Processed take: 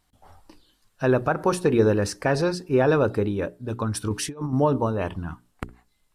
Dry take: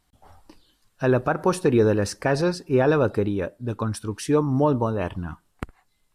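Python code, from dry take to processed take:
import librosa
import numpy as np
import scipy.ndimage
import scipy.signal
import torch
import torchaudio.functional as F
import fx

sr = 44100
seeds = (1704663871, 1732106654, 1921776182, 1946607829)

y = fx.hum_notches(x, sr, base_hz=60, count=7)
y = fx.over_compress(y, sr, threshold_db=-27.0, ratio=-0.5, at=(3.95, 4.53))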